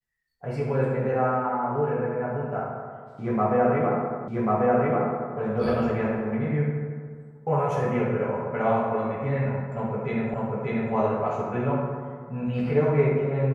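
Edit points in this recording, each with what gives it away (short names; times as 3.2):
4.28 repeat of the last 1.09 s
10.34 repeat of the last 0.59 s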